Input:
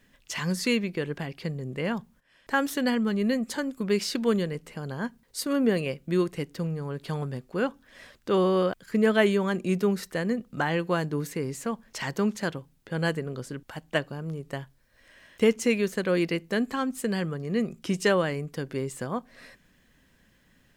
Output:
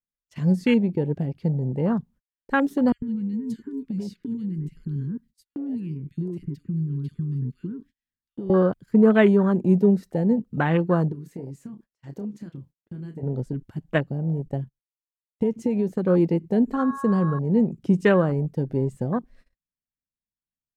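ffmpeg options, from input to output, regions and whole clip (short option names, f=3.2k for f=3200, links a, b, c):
-filter_complex "[0:a]asettb=1/sr,asplit=3[a][b][c];[a]atrim=end=2.924[d];[b]atrim=start=2.92:end=8.5,asetpts=PTS-STARTPTS,afade=t=in:d=0.004:c=qsin,afade=t=out:st=5.576:d=0.004:c=qsin,acompressor=threshold=-31dB:ratio=10:attack=3.2:release=140:knee=1:detection=peak,asuperstop=centerf=680:order=4:qfactor=0.69,acrossover=split=1700[e][f];[e]adelay=100[g];[g][f]amix=inputs=2:normalize=0,atrim=end_sample=246078[h];[c]atrim=start=8.496[i];[d][h]acrossfade=d=0.004:c1=hsin:c2=qsin[j];[j][i]acrossfade=d=0.004:c1=qsin:c2=hsin,asettb=1/sr,asplit=3[k][l][m];[k]atrim=end=11.124[n];[l]atrim=start=11.12:end=13.23,asetpts=PTS-STARTPTS,afade=t=in:d=0.004:c=qsin,afade=t=out:st=2.106:d=0.004:c=qsin,lowshelf=f=120:g=-10.5,acompressor=threshold=-39dB:ratio=4:attack=3.2:release=140:knee=1:detection=peak,asplit=2[o][p];[p]adelay=29,volume=-8dB[q];[o][q]amix=inputs=2:normalize=0,atrim=end_sample=93051[r];[m]atrim=start=13.226[s];[n][r]acrossfade=d=0.004:c1=hsin:c2=qsin[t];[t][s]acrossfade=d=0.004:c1=qsin:c2=hsin,asettb=1/sr,asplit=3[u][v][w];[u]atrim=end=14.284[x];[v]atrim=start=14.28:end=16.06,asetpts=PTS-STARTPTS,afade=t=in:d=0.004:c=qsin,afade=t=out:st=1.776:d=0.004:c=qsin,agate=range=-20dB:threshold=-52dB:ratio=16:release=100:detection=peak,acompressor=threshold=-24dB:ratio=6:attack=3.2:release=140:knee=1:detection=peak[y];[w]atrim=start=16.056[z];[x][y]acrossfade=d=0.004:c1=hsin:c2=qsin[aa];[aa][z]acrossfade=d=0.004:c1=qsin:c2=hsin,asettb=1/sr,asplit=3[ab][ac][ad];[ab]atrim=end=16.764[ae];[ac]atrim=start=16.76:end=17.39,asetpts=PTS-STARTPTS,afade=t=in:d=0.004:c=qsin,afade=t=out:st=0.626:d=0.004:c=qsin,equalizer=f=6.2k:w=4:g=6,aeval=exprs='val(0)+0.0224*sin(2*PI*1100*n/s)':c=same[af];[ad]atrim=start=17.386[ag];[ae][af]acrossfade=d=0.004:c1=hsin:c2=qsin[ah];[ah][ag]acrossfade=d=0.004:c1=qsin:c2=hsin,lowshelf=f=280:g=10.5,afwtdn=0.0355,agate=range=-31dB:threshold=-50dB:ratio=16:detection=peak,volume=1.5dB"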